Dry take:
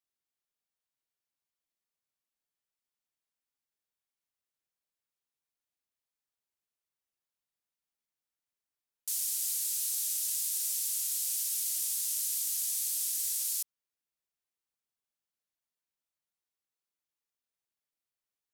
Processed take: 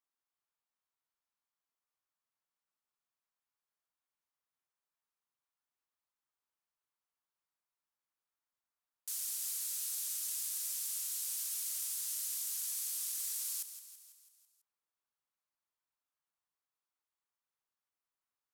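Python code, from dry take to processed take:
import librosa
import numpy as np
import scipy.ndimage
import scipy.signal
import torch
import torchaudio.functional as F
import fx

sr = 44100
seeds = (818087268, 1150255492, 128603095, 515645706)

y = fx.peak_eq(x, sr, hz=1100.0, db=11.0, octaves=1.3)
y = fx.echo_feedback(y, sr, ms=165, feedback_pct=57, wet_db=-11.5)
y = y * librosa.db_to_amplitude(-6.5)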